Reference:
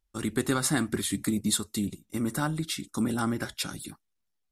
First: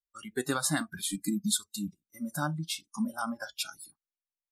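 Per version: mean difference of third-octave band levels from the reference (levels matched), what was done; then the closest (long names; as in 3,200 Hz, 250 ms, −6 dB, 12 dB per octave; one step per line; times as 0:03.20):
10.5 dB: noise reduction from a noise print of the clip's start 26 dB
level −1.5 dB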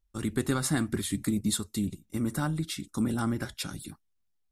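2.0 dB: low-shelf EQ 170 Hz +8.5 dB
level −3.5 dB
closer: second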